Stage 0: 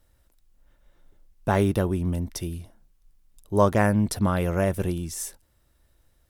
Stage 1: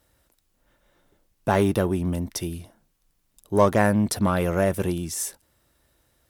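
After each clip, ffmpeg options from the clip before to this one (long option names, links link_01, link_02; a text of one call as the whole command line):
ffmpeg -i in.wav -filter_complex "[0:a]highpass=frequency=150:poles=1,asplit=2[link_01][link_02];[link_02]asoftclip=type=tanh:threshold=-22dB,volume=-4dB[link_03];[link_01][link_03]amix=inputs=2:normalize=0" out.wav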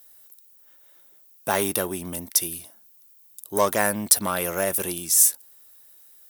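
ffmpeg -i in.wav -af "aemphasis=mode=production:type=riaa,volume=-1dB" out.wav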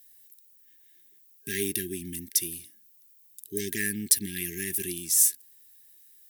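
ffmpeg -i in.wav -af "afftfilt=real='re*(1-between(b*sr/4096,430,1600))':imag='im*(1-between(b*sr/4096,430,1600))':win_size=4096:overlap=0.75,volume=-4dB" out.wav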